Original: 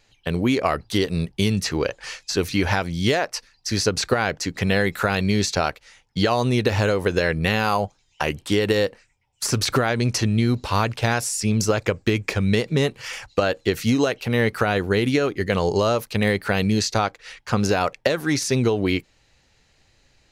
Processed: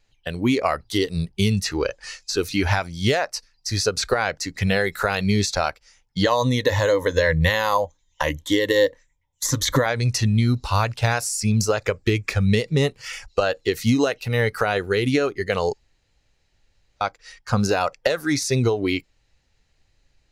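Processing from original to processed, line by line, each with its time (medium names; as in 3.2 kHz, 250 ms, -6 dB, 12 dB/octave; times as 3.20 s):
6.24–9.86 s: rippled EQ curve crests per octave 1.1, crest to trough 10 dB
15.73–17.01 s: room tone
whole clip: bass shelf 65 Hz +12 dB; spectral noise reduction 9 dB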